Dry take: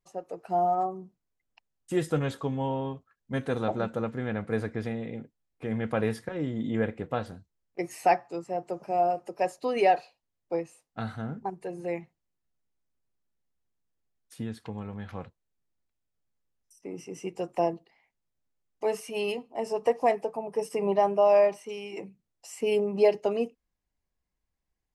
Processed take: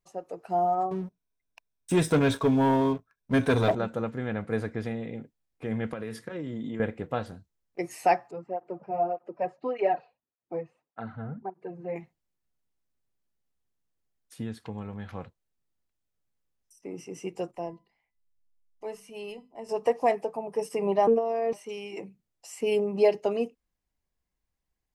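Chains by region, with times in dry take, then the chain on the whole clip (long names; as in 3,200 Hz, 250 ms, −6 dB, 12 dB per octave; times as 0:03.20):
0:00.91–0:03.75: EQ curve with evenly spaced ripples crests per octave 1.6, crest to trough 9 dB + leveller curve on the samples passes 2
0:05.93–0:06.80: high-pass filter 110 Hz + downward compressor 12 to 1, threshold −30 dBFS + parametric band 790 Hz −7 dB 0.36 octaves
0:08.31–0:11.96: low-pass filter 1,800 Hz + through-zero flanger with one copy inverted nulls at 1.7 Hz, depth 3.8 ms
0:17.51–0:19.69: low-shelf EQ 130 Hz +12 dB + mains-hum notches 50/100/150/200/250 Hz + tuned comb filter 1,000 Hz, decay 0.33 s, mix 70%
0:21.07–0:21.53: downward compressor 12 to 1, threshold −25 dBFS + hollow resonant body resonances 260/380/1,100 Hz, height 16 dB + phases set to zero 228 Hz
whole clip: no processing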